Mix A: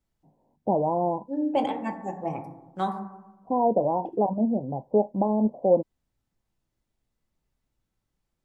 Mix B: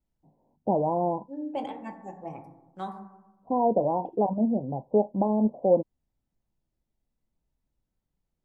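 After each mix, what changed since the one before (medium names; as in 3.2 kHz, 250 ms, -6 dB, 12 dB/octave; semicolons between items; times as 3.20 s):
first voice: add distance through air 340 m; second voice -8.0 dB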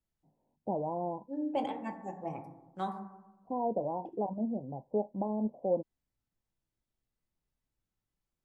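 first voice -9.0 dB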